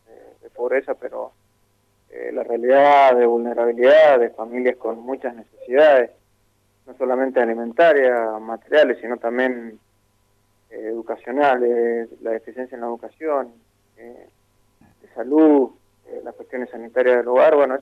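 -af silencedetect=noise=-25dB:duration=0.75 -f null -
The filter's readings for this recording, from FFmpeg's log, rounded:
silence_start: 1.26
silence_end: 2.16 | silence_duration: 0.91
silence_start: 6.05
silence_end: 7.01 | silence_duration: 0.96
silence_start: 9.59
silence_end: 10.76 | silence_duration: 1.17
silence_start: 13.43
silence_end: 15.18 | silence_duration: 1.74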